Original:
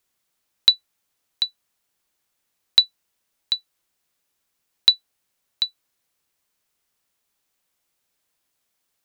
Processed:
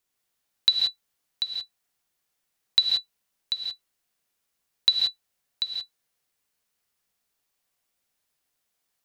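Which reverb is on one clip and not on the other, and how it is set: gated-style reverb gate 200 ms rising, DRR 1 dB; trim -5.5 dB

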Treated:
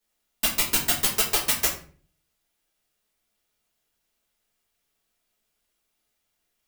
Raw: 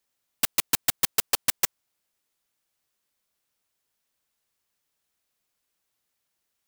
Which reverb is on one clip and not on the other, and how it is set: simulated room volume 35 m³, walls mixed, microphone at 1.4 m; trim -5 dB

